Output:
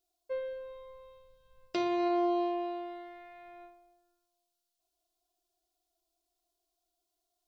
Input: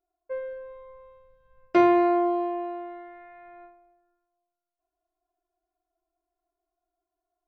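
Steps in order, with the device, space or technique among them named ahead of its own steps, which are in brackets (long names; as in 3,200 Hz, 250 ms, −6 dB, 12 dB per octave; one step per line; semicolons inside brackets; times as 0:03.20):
over-bright horn tweeter (high shelf with overshoot 2,600 Hz +12.5 dB, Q 1.5; brickwall limiter −20.5 dBFS, peak gain reduction 12 dB)
level −2.5 dB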